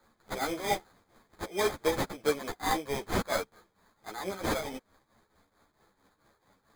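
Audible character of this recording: aliases and images of a low sample rate 2.8 kHz, jitter 0%; tremolo triangle 4.5 Hz, depth 80%; a shimmering, thickened sound

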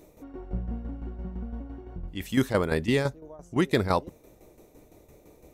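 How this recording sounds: tremolo saw down 5.9 Hz, depth 65%

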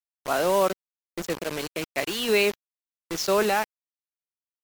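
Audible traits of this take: random-step tremolo; a quantiser's noise floor 6-bit, dither none; MP3

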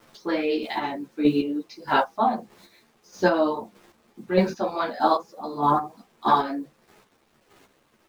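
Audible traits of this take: a quantiser's noise floor 10-bit, dither none; chopped level 1.6 Hz, depth 60%, duty 25%; a shimmering, thickened sound

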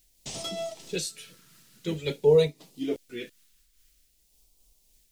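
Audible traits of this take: a quantiser's noise floor 12-bit, dither triangular; phasing stages 2, 0.49 Hz, lowest notch 710–1500 Hz; random flutter of the level

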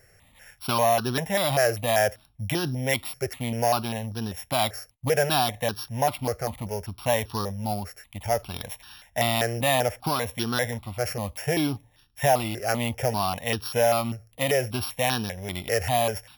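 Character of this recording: a buzz of ramps at a fixed pitch in blocks of 8 samples; notches that jump at a steady rate 5.1 Hz 990–2100 Hz

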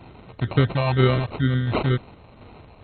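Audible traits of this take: phasing stages 4, 2.1 Hz, lowest notch 320–1200 Hz; aliases and images of a low sample rate 1.7 kHz, jitter 0%; MP2

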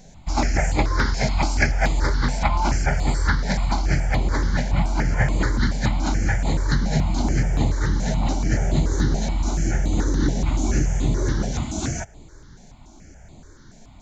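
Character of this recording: notches that jump at a steady rate 7 Hz 320–5600 Hz

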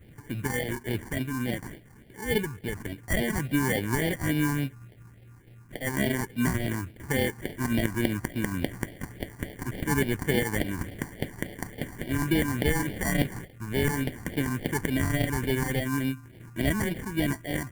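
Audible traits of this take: aliases and images of a low sample rate 1.3 kHz, jitter 0%; phasing stages 4, 3.5 Hz, lowest notch 550–1100 Hz

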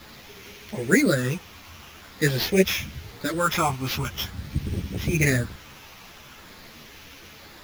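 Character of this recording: a quantiser's noise floor 8-bit, dither triangular; phasing stages 8, 0.46 Hz, lowest notch 510–1300 Hz; aliases and images of a low sample rate 8.7 kHz, jitter 0%; a shimmering, thickened sound

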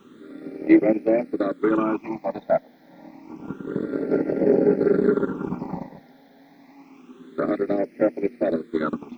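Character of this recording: a quantiser's noise floor 12-bit, dither none; phasing stages 8, 0.28 Hz, lowest notch 350–1100 Hz

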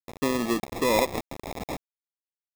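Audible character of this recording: a quantiser's noise floor 6-bit, dither none; random-step tremolo 3.4 Hz; aliases and images of a low sample rate 1.5 kHz, jitter 0%

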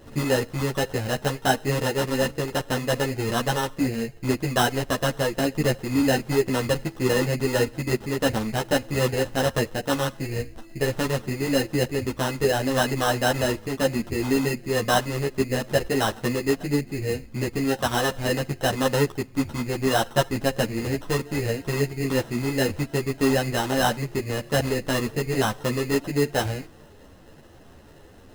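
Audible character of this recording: aliases and images of a low sample rate 2.3 kHz, jitter 0%; a shimmering, thickened sound

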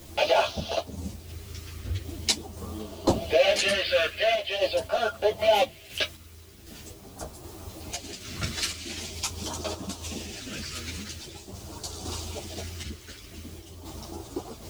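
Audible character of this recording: phasing stages 2, 0.44 Hz, lowest notch 800–2000 Hz; a quantiser's noise floor 10-bit, dither triangular; random-step tremolo 3.9 Hz; a shimmering, thickened sound

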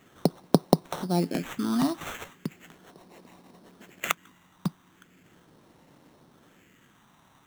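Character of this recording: phasing stages 4, 0.38 Hz, lowest notch 450–3200 Hz; aliases and images of a low sample rate 4.8 kHz, jitter 0%

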